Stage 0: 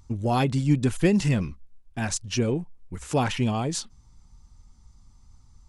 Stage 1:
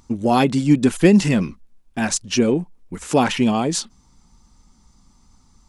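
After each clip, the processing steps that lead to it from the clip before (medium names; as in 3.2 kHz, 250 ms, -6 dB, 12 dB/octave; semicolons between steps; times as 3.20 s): resonant low shelf 150 Hz -9 dB, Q 1.5; trim +7 dB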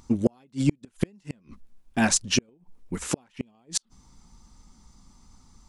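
inverted gate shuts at -9 dBFS, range -41 dB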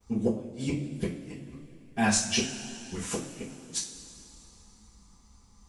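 two-slope reverb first 0.32 s, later 3.1 s, from -18 dB, DRR -9.5 dB; expander -44 dBFS; flange 0.58 Hz, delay 5.9 ms, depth 8.3 ms, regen +79%; trim -7.5 dB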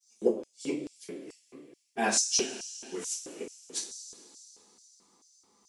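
LFO high-pass square 2.3 Hz 380–5600 Hz; trim -2.5 dB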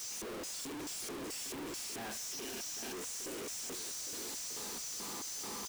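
one-bit comparator; delay 807 ms -11.5 dB; trim -7 dB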